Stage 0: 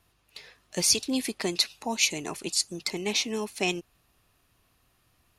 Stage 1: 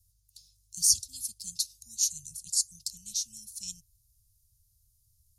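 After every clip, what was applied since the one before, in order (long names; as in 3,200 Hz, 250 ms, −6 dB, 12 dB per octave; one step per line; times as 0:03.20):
inverse Chebyshev band-stop filter 310–2,000 Hz, stop band 60 dB
level +2.5 dB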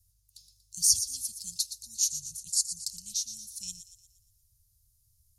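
delay with a high-pass on its return 118 ms, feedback 47%, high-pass 3,700 Hz, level −10 dB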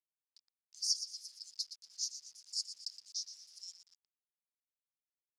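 hold until the input has moved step −41 dBFS
resonant band-pass 5,000 Hz, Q 9.1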